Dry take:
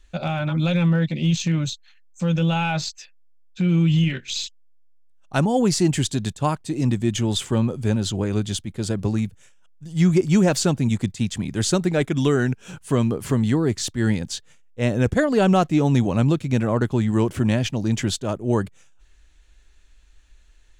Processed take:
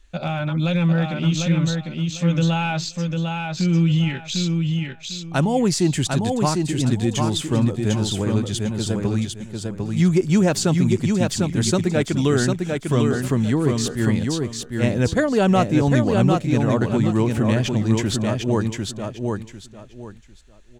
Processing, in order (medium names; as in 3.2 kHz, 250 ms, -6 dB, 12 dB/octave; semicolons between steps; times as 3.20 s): feedback delay 750 ms, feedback 24%, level -4 dB